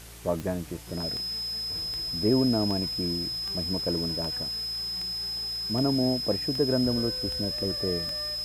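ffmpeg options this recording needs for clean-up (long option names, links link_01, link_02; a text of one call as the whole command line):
ffmpeg -i in.wav -af "adeclick=threshold=4,bandreject=frequency=57.1:width_type=h:width=4,bandreject=frequency=114.2:width_type=h:width=4,bandreject=frequency=171.3:width_type=h:width=4,bandreject=frequency=5100:width=30,afwtdn=0.0045" out.wav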